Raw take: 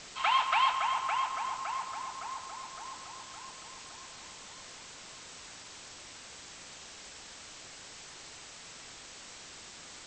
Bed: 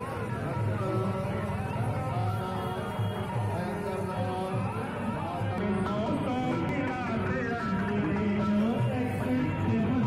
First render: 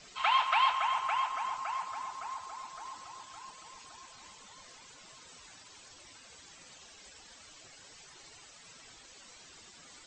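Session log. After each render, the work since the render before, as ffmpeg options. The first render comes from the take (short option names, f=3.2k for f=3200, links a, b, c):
-af "afftdn=nr=12:nf=-49"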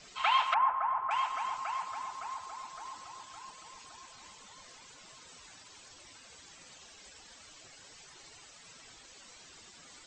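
-filter_complex "[0:a]asettb=1/sr,asplit=3[a][b][c];[a]atrim=end=0.544[d];[b]atrim=start=0.54:end=1.11,asetpts=PTS-STARTPTS,afade=t=in:d=0.004:c=qsin,afade=t=out:st=0.566:d=0.004:c=qsin,lowpass=f=1.5k:w=0.5412,lowpass=f=1.5k:w=1.3066[e];[c]atrim=start=1.106[f];[d][e]acrossfade=d=0.004:c1=hsin:c2=qsin[g];[g][f]acrossfade=d=0.004:c1=qsin:c2=hsin"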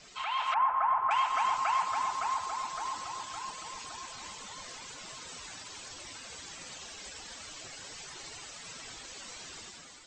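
-af "alimiter=level_in=3.5dB:limit=-24dB:level=0:latency=1:release=216,volume=-3.5dB,dynaudnorm=f=120:g=7:m=8.5dB"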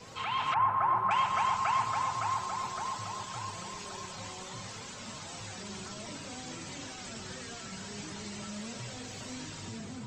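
-filter_complex "[1:a]volume=-16dB[a];[0:a][a]amix=inputs=2:normalize=0"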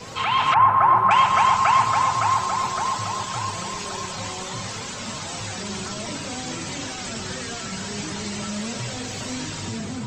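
-af "volume=11.5dB"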